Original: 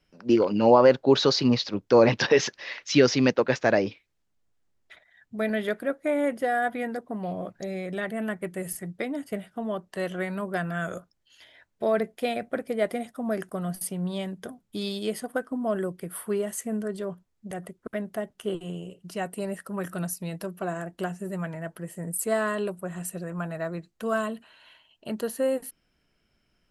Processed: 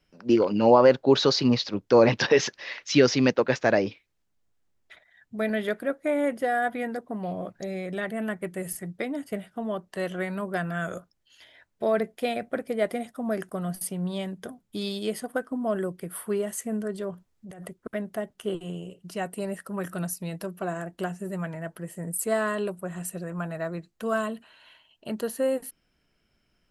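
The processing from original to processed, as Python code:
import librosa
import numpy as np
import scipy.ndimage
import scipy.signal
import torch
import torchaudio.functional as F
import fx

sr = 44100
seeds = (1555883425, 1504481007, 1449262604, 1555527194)

y = fx.over_compress(x, sr, threshold_db=-41.0, ratio=-1.0, at=(17.11, 17.74))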